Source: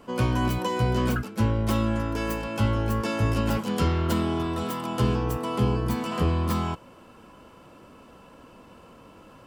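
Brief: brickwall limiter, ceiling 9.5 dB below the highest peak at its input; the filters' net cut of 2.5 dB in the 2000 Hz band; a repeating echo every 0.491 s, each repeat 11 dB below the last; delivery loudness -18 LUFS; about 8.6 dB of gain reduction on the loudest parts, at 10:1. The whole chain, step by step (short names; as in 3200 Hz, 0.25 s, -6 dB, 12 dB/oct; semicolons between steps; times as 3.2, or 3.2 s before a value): bell 2000 Hz -3.5 dB; compressor 10:1, threshold -27 dBFS; limiter -28 dBFS; feedback echo 0.491 s, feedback 28%, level -11 dB; gain +18.5 dB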